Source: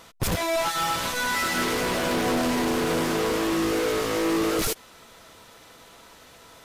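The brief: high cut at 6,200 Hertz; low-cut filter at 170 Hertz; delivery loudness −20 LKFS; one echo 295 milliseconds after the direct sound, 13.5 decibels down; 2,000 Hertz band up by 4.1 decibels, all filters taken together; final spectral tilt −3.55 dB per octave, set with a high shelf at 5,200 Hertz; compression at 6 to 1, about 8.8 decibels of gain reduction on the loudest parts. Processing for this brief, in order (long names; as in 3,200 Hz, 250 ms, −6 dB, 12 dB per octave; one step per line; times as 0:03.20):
high-pass filter 170 Hz
low-pass filter 6,200 Hz
parametric band 2,000 Hz +5.5 dB
high-shelf EQ 5,200 Hz −3 dB
downward compressor 6 to 1, threshold −30 dBFS
single-tap delay 295 ms −13.5 dB
level +12 dB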